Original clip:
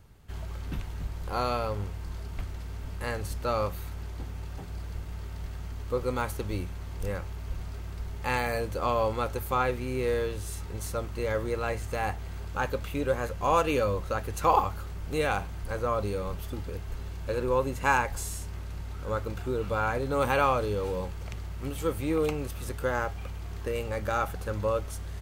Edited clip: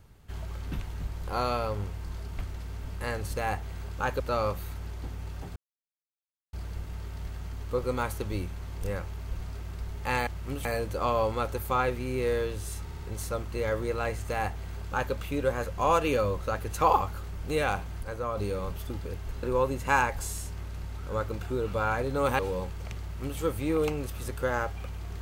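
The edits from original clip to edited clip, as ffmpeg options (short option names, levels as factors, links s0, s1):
-filter_complex "[0:a]asplit=13[s0][s1][s2][s3][s4][s5][s6][s7][s8][s9][s10][s11][s12];[s0]atrim=end=3.362[s13];[s1]atrim=start=11.918:end=12.762[s14];[s2]atrim=start=3.358:end=4.72,asetpts=PTS-STARTPTS,afade=t=out:st=1.358:d=0.004:c=hsin,apad=pad_dur=0.97[s15];[s3]atrim=start=4.72:end=8.462,asetpts=PTS-STARTPTS,afade=t=in:d=0.004:c=hsin[s16];[s4]atrim=start=21.418:end=21.802[s17];[s5]atrim=start=8.458:end=10.702[s18];[s6]atrim=start=10.638:end=10.702[s19];[s7]atrim=start=10.638:end=10.702[s20];[s8]atrim=start=10.638:end=15.662[s21];[s9]atrim=start=15.658:end=16.002,asetpts=PTS-STARTPTS,volume=0.631[s22];[s10]atrim=start=15.998:end=17.062[s23];[s11]atrim=start=17.388:end=20.352[s24];[s12]atrim=start=20.798[s25];[s13][s14]acrossfade=d=0.004:c1=hsin:c2=hsin[s26];[s15][s16]concat=n=2:v=0:a=1[s27];[s26][s27]acrossfade=d=0.004:c1=hsin:c2=hsin[s28];[s28][s17]acrossfade=d=0.004:c1=hsin:c2=hsin[s29];[s29][s18]acrossfade=d=0.004:c1=hsin:c2=hsin[s30];[s30][s19]acrossfade=d=0.004:c1=hsin:c2=hsin[s31];[s31][s20]acrossfade=d=0.004:c1=hsin:c2=hsin[s32];[s32][s21]acrossfade=d=0.004:c1=hsin:c2=hsin[s33];[s33][s22]acrossfade=d=0.004:c1=hsin:c2=hsin[s34];[s34][s23]acrossfade=d=0.004:c1=hsin:c2=hsin[s35];[s35][s24]acrossfade=d=0.004:c1=hsin:c2=hsin[s36];[s36][s25]acrossfade=d=0.004:c1=hsin:c2=hsin"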